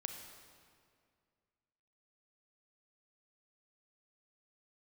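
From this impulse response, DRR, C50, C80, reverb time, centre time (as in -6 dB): 4.5 dB, 5.5 dB, 6.5 dB, 2.2 s, 45 ms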